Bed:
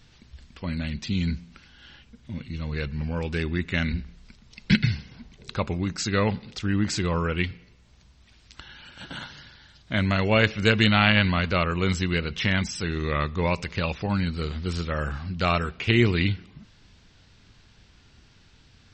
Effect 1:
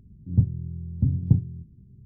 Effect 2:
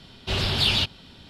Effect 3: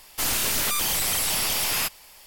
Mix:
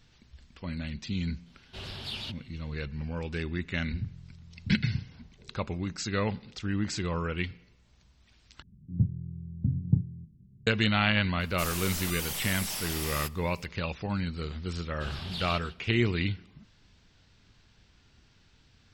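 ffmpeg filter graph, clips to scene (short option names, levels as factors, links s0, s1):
-filter_complex "[2:a]asplit=2[s0][s1];[1:a]asplit=2[s2][s3];[0:a]volume=0.501[s4];[s2]equalizer=f=600:w=1.5:g=-13.5[s5];[s3]equalizer=f=170:w=1.2:g=6.5[s6];[s1]asplit=2[s7][s8];[s8]adelay=151.6,volume=0.282,highshelf=f=4000:g=-3.41[s9];[s7][s9]amix=inputs=2:normalize=0[s10];[s4]asplit=2[s11][s12];[s11]atrim=end=8.624[s13];[s6]atrim=end=2.05,asetpts=PTS-STARTPTS,volume=0.335[s14];[s12]atrim=start=10.666[s15];[s0]atrim=end=1.29,asetpts=PTS-STARTPTS,volume=0.158,afade=t=in:d=0.004:c=hsin,afade=t=out:st=1.286:d=0.004:c=hsin,adelay=1460[s16];[s5]atrim=end=2.05,asetpts=PTS-STARTPTS,volume=0.168,afade=t=in:d=0.004:c=hsin,afade=t=out:st=2.046:d=0.004:c=hsin,adelay=3640[s17];[3:a]atrim=end=2.26,asetpts=PTS-STARTPTS,volume=0.282,afade=t=in:d=0.004:c=hsin,afade=t=out:st=2.256:d=0.004:c=hsin,adelay=11400[s18];[s10]atrim=end=1.29,asetpts=PTS-STARTPTS,volume=0.15,afade=t=in:d=0.004:c=hsin,afade=t=out:st=1.286:d=0.004:c=hsin,adelay=14730[s19];[s13][s14]acrossfade=d=0.004:c1=hsin:c2=hsin[s20];[s20][s15]acrossfade=d=0.004:c1=hsin:c2=hsin[s21];[s21][s16][s17][s18][s19]amix=inputs=5:normalize=0"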